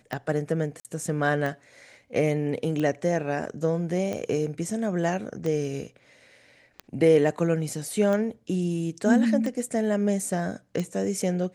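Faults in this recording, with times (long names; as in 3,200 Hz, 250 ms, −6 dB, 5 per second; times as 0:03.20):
scratch tick 45 rpm −18 dBFS
0:00.80–0:00.85: drop-out 48 ms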